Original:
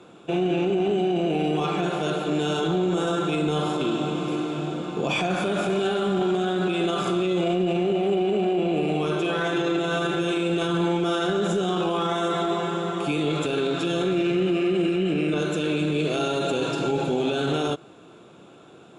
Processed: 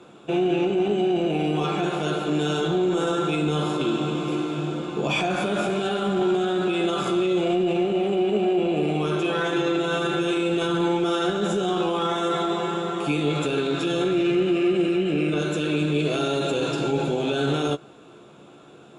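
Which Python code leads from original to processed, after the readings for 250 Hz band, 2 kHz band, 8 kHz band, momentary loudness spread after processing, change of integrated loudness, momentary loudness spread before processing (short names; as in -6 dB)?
+1.0 dB, +0.5 dB, +0.5 dB, 3 LU, +0.5 dB, 3 LU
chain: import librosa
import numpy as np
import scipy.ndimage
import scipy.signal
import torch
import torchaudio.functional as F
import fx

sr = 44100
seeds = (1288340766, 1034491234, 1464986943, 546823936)

y = fx.doubler(x, sr, ms=14.0, db=-8.0)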